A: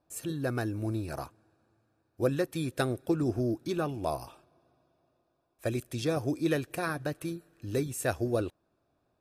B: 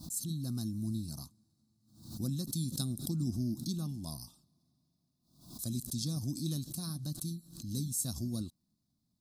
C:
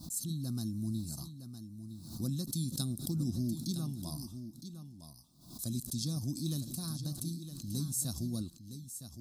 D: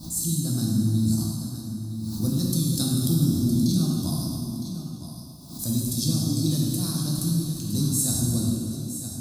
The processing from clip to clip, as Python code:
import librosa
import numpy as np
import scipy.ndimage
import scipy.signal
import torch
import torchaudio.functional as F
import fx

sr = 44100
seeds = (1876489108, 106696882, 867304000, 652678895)

y1 = fx.curve_eq(x, sr, hz=(110.0, 210.0, 440.0, 1100.0, 1700.0, 2400.0, 4100.0), db=(0, 10, -23, -13, -28, -27, 8))
y1 = fx.pre_swell(y1, sr, db_per_s=97.0)
y1 = y1 * librosa.db_to_amplitude(-4.5)
y2 = y1 + 10.0 ** (-10.5 / 20.0) * np.pad(y1, (int(962 * sr / 1000.0), 0))[:len(y1)]
y3 = fx.rev_plate(y2, sr, seeds[0], rt60_s=2.5, hf_ratio=0.8, predelay_ms=0, drr_db=-4.0)
y3 = y3 * librosa.db_to_amplitude(7.0)